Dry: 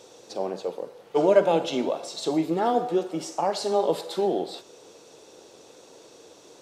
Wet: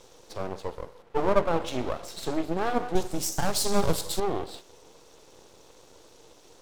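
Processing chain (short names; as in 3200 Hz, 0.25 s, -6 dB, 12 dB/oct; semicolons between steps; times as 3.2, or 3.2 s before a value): 1.02–1.62 high shelf 2400 Hz -10 dB; half-wave rectifier; 2.95–4.2 tone controls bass +8 dB, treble +15 dB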